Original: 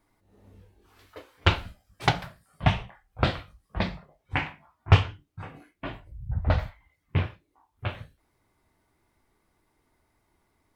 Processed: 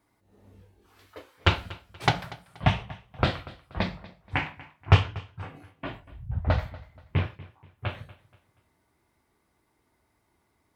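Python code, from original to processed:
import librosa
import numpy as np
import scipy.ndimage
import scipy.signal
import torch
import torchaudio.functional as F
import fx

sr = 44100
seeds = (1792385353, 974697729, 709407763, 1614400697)

y = scipy.signal.sosfilt(scipy.signal.butter(2, 55.0, 'highpass', fs=sr, output='sos'), x)
y = fx.echo_feedback(y, sr, ms=239, feedback_pct=34, wet_db=-19.5)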